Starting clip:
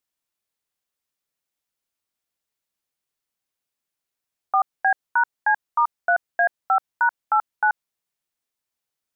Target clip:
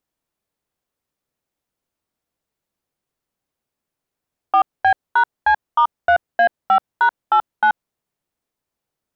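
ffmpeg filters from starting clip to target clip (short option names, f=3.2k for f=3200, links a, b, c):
-af "tiltshelf=f=1.2k:g=6.5,asoftclip=type=tanh:threshold=-11dB,volume=5dB"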